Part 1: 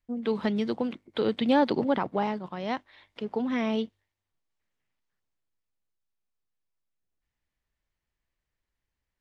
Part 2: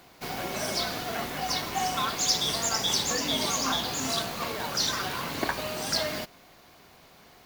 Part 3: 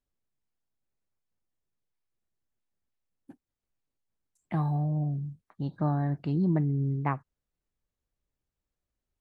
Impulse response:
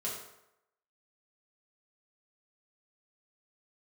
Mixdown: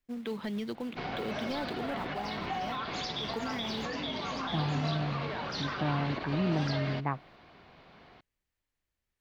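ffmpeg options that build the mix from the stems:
-filter_complex "[0:a]highshelf=f=2.5k:g=12,asoftclip=type=tanh:threshold=-16.5dB,acrusher=bits=4:mode=log:mix=0:aa=0.000001,volume=1.5dB[a];[1:a]lowpass=f=4.5k:w=0.5412,lowpass=f=4.5k:w=1.3066,adelay=750,volume=-0.5dB[b];[2:a]volume=-2.5dB,asplit=2[c][d];[d]apad=whole_len=406035[e];[a][e]sidechaingate=range=-8dB:threshold=-58dB:ratio=16:detection=peak[f];[f][b]amix=inputs=2:normalize=0,bass=f=250:g=4,treble=f=4k:g=-8,alimiter=level_in=1.5dB:limit=-24dB:level=0:latency=1:release=92,volume=-1.5dB,volume=0dB[g];[c][g]amix=inputs=2:normalize=0,lowshelf=f=150:g=-4"

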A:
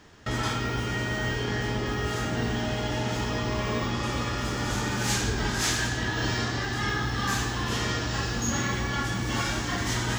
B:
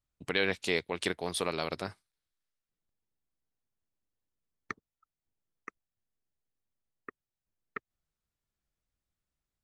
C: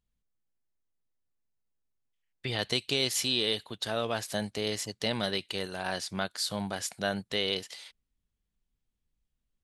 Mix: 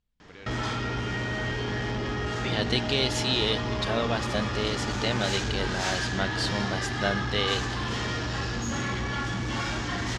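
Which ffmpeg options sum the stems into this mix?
-filter_complex "[0:a]asoftclip=type=tanh:threshold=-26dB,adelay=200,volume=1.5dB[a];[1:a]deesser=0.85,volume=-17.5dB[b];[2:a]volume=2.5dB[c];[a][b][c]amix=inputs=3:normalize=0,lowpass=5.5k"

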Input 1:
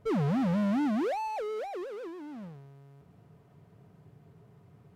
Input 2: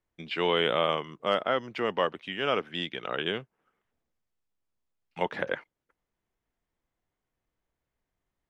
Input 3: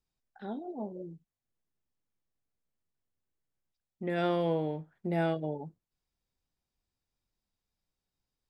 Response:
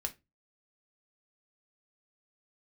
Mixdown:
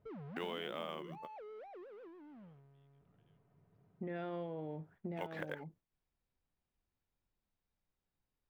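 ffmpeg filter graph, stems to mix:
-filter_complex "[0:a]acompressor=threshold=-37dB:ratio=2.5,volume=-13dB[a];[1:a]acrusher=bits=7:mode=log:mix=0:aa=0.000001,volume=-4dB[b];[2:a]volume=-0.5dB,asplit=2[c][d];[d]apad=whole_len=374600[e];[b][e]sidechaingate=range=-48dB:threshold=-57dB:ratio=16:detection=peak[f];[a][c]amix=inputs=2:normalize=0,lowpass=2.7k,alimiter=level_in=5.5dB:limit=-24dB:level=0:latency=1,volume=-5.5dB,volume=0dB[g];[f][g]amix=inputs=2:normalize=0,acompressor=threshold=-39dB:ratio=6"

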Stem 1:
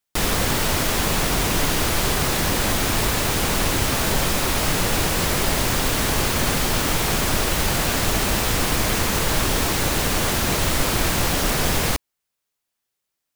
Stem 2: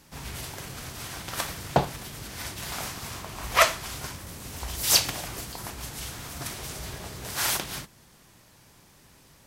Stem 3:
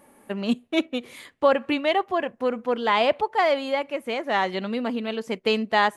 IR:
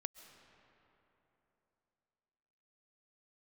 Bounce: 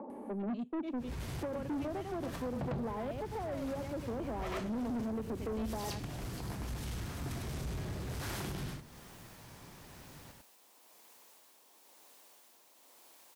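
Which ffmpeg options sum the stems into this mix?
-filter_complex "[0:a]aderivative,tremolo=f=1:d=0.39,adelay=2050,volume=-18.5dB,asplit=2[a][b];[b]volume=-10.5dB[c];[1:a]adelay=850,volume=3dB,asplit=2[d][e];[e]volume=-4dB[f];[2:a]acompressor=mode=upward:threshold=-32dB:ratio=2.5,volume=2dB,asplit=3[g][h][i];[h]volume=-14.5dB[j];[i]apad=whole_len=454897[k];[d][k]sidechaincompress=threshold=-33dB:ratio=4:attack=40:release=430[l];[a][g]amix=inputs=2:normalize=0,asuperpass=centerf=470:order=12:qfactor=0.55,acompressor=threshold=-24dB:ratio=5,volume=0dB[m];[c][f][j]amix=inputs=3:normalize=0,aecho=0:1:101:1[n];[l][m][n]amix=inputs=3:normalize=0,highshelf=f=3.7k:g=-8,acrossover=split=370[o][p];[p]acompressor=threshold=-51dB:ratio=2[q];[o][q]amix=inputs=2:normalize=0,asoftclip=type=tanh:threshold=-33dB"

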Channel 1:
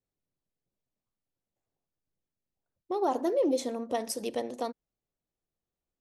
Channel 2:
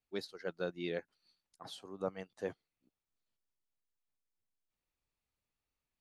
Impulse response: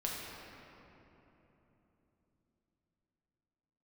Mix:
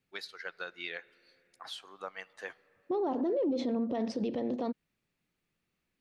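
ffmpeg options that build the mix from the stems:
-filter_complex "[0:a]lowpass=f=4.3k:w=0.5412,lowpass=f=4.3k:w=1.3066,equalizer=f=190:w=0.57:g=12,acontrast=29,volume=-5dB[a];[1:a]highpass=f=1.3k:p=1,equalizer=f=1.8k:t=o:w=2.1:g=11,acompressor=threshold=-36dB:ratio=6,volume=1dB,asplit=2[b][c];[c]volume=-23dB[d];[2:a]atrim=start_sample=2205[e];[d][e]afir=irnorm=-1:irlink=0[f];[a][b][f]amix=inputs=3:normalize=0,alimiter=level_in=1dB:limit=-24dB:level=0:latency=1:release=41,volume=-1dB"

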